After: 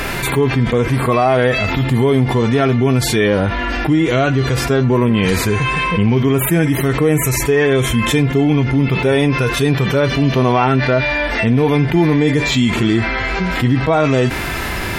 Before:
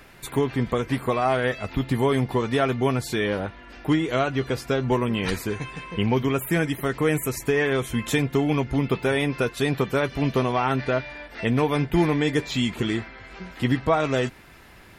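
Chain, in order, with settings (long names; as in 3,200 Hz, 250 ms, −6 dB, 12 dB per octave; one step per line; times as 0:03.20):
harmonic and percussive parts rebalanced percussive −14 dB
envelope flattener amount 70%
level +6 dB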